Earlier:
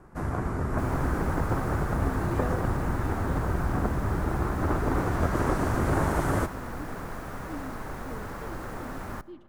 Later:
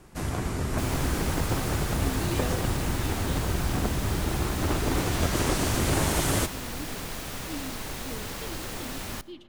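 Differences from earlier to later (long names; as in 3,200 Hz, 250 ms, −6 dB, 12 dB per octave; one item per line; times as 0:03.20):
speech: send +7.0 dB
master: add high shelf with overshoot 2,100 Hz +13 dB, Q 1.5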